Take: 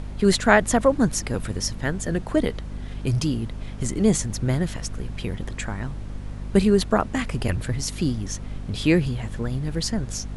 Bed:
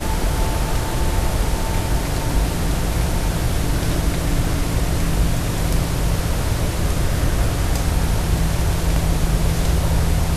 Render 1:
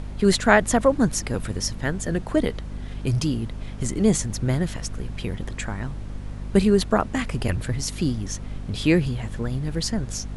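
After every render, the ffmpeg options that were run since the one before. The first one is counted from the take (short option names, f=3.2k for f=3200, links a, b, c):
-af anull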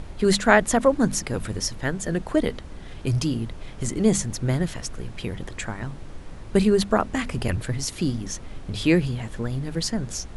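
-af "bandreject=f=50:t=h:w=6,bandreject=f=100:t=h:w=6,bandreject=f=150:t=h:w=6,bandreject=f=200:t=h:w=6,bandreject=f=250:t=h:w=6"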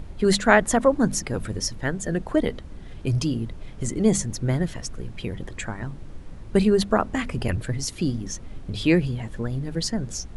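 -af "afftdn=nr=6:nf=-39"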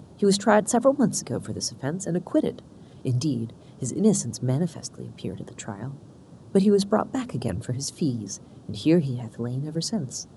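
-af "highpass=f=110:w=0.5412,highpass=f=110:w=1.3066,equalizer=f=2.1k:t=o:w=0.97:g=-14"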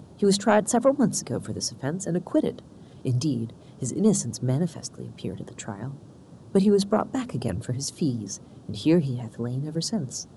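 -af "asoftclip=type=tanh:threshold=-6.5dB"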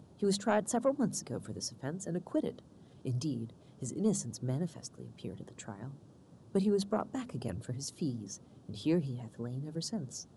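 -af "volume=-10dB"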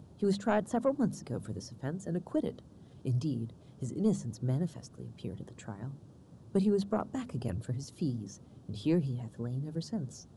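-filter_complex "[0:a]acrossover=split=3500[a][b];[b]acompressor=threshold=-48dB:ratio=4:attack=1:release=60[c];[a][c]amix=inputs=2:normalize=0,lowshelf=f=110:g=9.5"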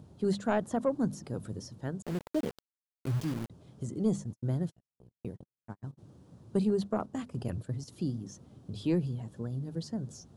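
-filter_complex "[0:a]asettb=1/sr,asplit=3[a][b][c];[a]atrim=end=2.024[d];[b]atrim=start=2.02:end=3.5,asetpts=PTS-STARTPTS,afade=t=in:d=0.004:c=qsin,afade=t=out:st=1.476:d=0.004:c=qsin,aeval=exprs='val(0)*gte(abs(val(0)),0.0133)':c=same[e];[c]atrim=start=3.496[f];[d][e]acrossfade=d=0.004:c1=hsin:c2=qsin[g];[g][f]acrossfade=d=0.004:c1=qsin:c2=hsin,asplit=3[h][i][j];[h]afade=t=out:st=4.23:d=0.02[k];[i]agate=range=-56dB:threshold=-41dB:ratio=16:release=100:detection=peak,afade=t=in:st=4.23:d=0.02,afade=t=out:st=5.97:d=0.02[l];[j]afade=t=in:st=5.97:d=0.02[m];[k][l][m]amix=inputs=3:normalize=0,asettb=1/sr,asplit=3[n][o][p];[n]atrim=end=6.704[q];[o]atrim=start=6.7:end=7.88,asetpts=PTS-STARTPTS,afade=t=in:d=0.004:c=qsin,afade=t=out:st=1.176:d=0.004:c=qsin,agate=range=-6dB:threshold=-42dB:ratio=16:release=100:detection=peak[r];[p]atrim=start=7.876[s];[q][r]acrossfade=d=0.004:c1=hsin:c2=qsin[t];[t][s]acrossfade=d=0.004:c1=qsin:c2=hsin"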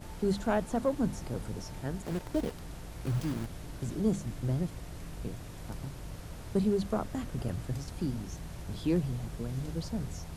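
-filter_complex "[1:a]volume=-23.5dB[a];[0:a][a]amix=inputs=2:normalize=0"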